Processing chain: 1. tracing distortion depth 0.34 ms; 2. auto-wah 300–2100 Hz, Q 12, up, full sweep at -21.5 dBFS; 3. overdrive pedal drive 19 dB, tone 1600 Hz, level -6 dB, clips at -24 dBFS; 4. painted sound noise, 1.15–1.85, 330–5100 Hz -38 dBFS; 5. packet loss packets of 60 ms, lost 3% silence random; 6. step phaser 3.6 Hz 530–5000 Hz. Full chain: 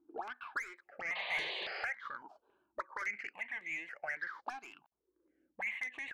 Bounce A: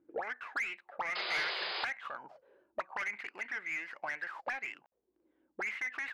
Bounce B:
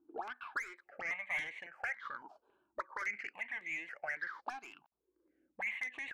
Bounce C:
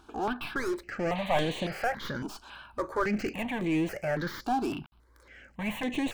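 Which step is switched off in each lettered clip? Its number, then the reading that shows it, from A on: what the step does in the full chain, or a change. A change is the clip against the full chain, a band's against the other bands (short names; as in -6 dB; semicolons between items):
6, loudness change +2.5 LU; 4, 4 kHz band -9.5 dB; 2, 250 Hz band +18.0 dB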